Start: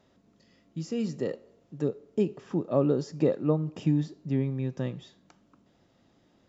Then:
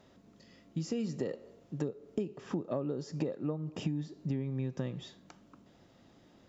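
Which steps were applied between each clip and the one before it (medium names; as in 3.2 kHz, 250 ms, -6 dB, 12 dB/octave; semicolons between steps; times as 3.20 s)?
compression 16:1, threshold -34 dBFS, peak gain reduction 16.5 dB; trim +3.5 dB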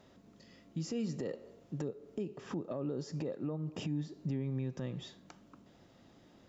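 peak limiter -28.5 dBFS, peak gain reduction 7.5 dB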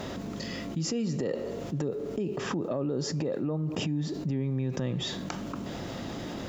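level flattener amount 70%; trim +4.5 dB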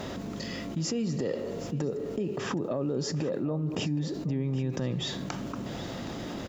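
delay 769 ms -15 dB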